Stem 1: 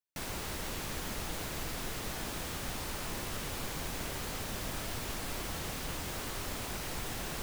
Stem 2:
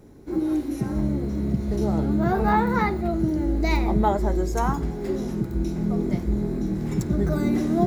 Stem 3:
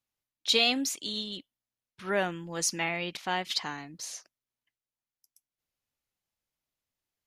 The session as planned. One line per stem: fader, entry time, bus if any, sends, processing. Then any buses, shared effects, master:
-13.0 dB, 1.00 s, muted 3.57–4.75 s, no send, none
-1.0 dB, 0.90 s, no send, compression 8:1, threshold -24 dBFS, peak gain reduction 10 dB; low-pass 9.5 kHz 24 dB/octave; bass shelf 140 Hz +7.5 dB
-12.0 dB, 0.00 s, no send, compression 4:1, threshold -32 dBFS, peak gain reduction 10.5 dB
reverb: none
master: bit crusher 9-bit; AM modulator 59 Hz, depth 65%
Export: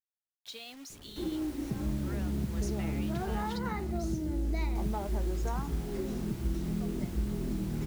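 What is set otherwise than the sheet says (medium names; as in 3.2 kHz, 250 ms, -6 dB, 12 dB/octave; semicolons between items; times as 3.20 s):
stem 2 -1.0 dB -> -8.0 dB; master: missing AM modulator 59 Hz, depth 65%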